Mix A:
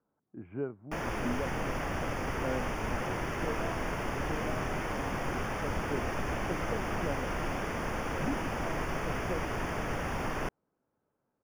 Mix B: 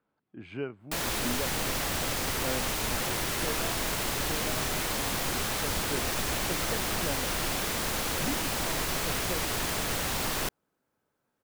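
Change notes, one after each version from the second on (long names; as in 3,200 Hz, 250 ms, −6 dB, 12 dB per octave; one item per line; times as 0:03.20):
speech: remove low-pass filter 1,300 Hz 12 dB per octave
master: remove moving average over 11 samples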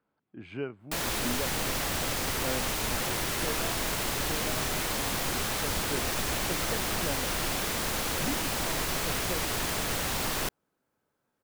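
nothing changed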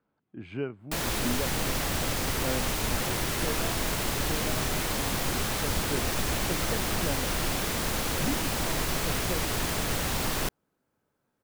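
master: add low-shelf EQ 320 Hz +5 dB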